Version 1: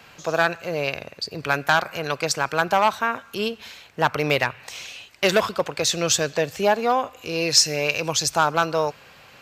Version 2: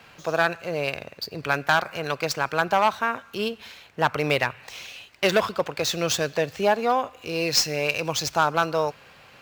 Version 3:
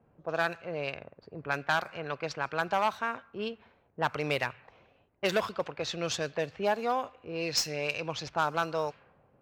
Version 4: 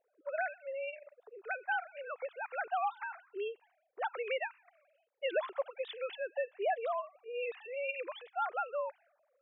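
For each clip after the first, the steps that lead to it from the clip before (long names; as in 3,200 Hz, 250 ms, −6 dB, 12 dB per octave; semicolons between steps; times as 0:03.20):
running median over 5 samples; level −1.5 dB
low-pass that shuts in the quiet parts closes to 460 Hz, open at −18 dBFS; level −7.5 dB
three sine waves on the formant tracks; level −5.5 dB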